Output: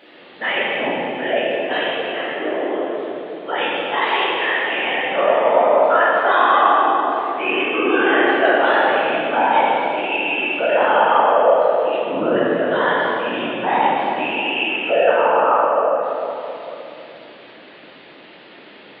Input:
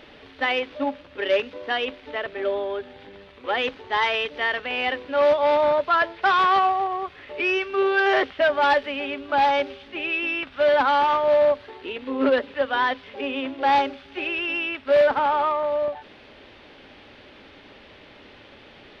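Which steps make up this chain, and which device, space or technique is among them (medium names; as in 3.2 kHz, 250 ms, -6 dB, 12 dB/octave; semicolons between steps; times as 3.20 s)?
spectral gate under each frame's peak -25 dB strong; whispering ghost (whisper effect; high-pass 230 Hz 12 dB/octave; reverberation RT60 3.0 s, pre-delay 10 ms, DRR -7.5 dB); trim -2.5 dB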